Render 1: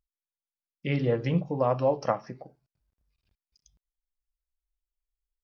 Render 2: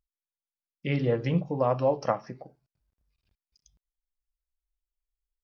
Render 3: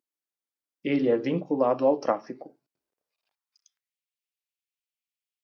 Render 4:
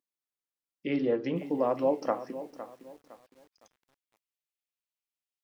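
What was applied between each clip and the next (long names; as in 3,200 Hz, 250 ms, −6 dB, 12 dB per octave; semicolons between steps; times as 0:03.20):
no processing that can be heard
high-pass filter sweep 290 Hz → 2,500 Hz, 0:02.71–0:04.00
feedback echo at a low word length 510 ms, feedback 35%, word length 8 bits, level −13 dB; level −4.5 dB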